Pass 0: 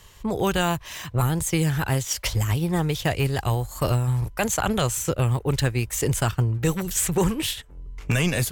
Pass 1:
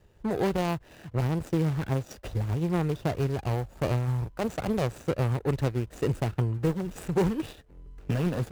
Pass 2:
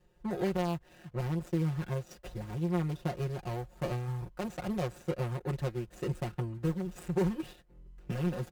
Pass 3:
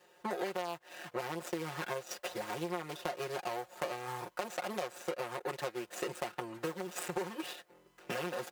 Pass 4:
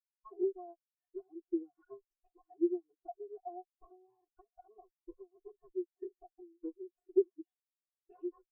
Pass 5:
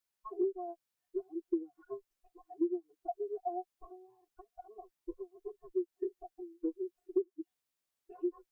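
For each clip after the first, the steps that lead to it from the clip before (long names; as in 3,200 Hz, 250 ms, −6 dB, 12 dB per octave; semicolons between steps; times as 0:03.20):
running median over 41 samples; low-shelf EQ 120 Hz −10 dB
comb filter 5.6 ms, depth 94%; level −9 dB
high-pass filter 560 Hz 12 dB per octave; downward compressor 6 to 1, threshold −46 dBFS, peak gain reduction 14.5 dB; level +12 dB
lower of the sound and its delayed copy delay 2.7 ms; every bin expanded away from the loudest bin 4 to 1; level +3.5 dB
downward compressor 6 to 1, threshold −37 dBFS, peak gain reduction 14.5 dB; level +8 dB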